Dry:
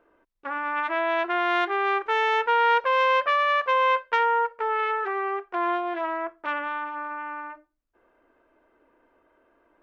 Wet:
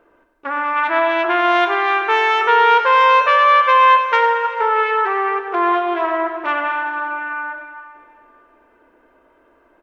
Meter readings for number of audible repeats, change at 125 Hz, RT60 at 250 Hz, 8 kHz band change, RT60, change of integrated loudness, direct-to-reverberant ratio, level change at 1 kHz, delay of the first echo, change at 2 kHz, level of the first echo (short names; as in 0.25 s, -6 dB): 1, n/a, 2.6 s, n/a, 2.6 s, +9.0 dB, 5.0 dB, +9.5 dB, 97 ms, +8.5 dB, -11.5 dB